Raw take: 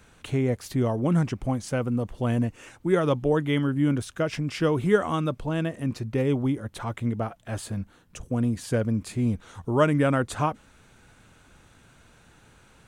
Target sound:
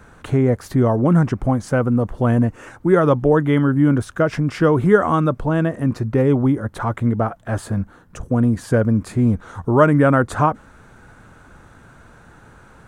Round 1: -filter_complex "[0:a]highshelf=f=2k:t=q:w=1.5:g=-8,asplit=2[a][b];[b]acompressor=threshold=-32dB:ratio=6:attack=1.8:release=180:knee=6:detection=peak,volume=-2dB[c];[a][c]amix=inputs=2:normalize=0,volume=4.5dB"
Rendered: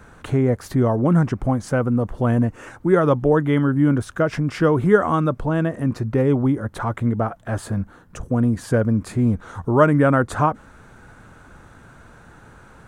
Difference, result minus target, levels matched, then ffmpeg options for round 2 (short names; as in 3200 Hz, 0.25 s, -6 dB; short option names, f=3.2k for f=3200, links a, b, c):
compressor: peak gain reduction +9 dB
-filter_complex "[0:a]highshelf=f=2k:t=q:w=1.5:g=-8,asplit=2[a][b];[b]acompressor=threshold=-21.5dB:ratio=6:attack=1.8:release=180:knee=6:detection=peak,volume=-2dB[c];[a][c]amix=inputs=2:normalize=0,volume=4.5dB"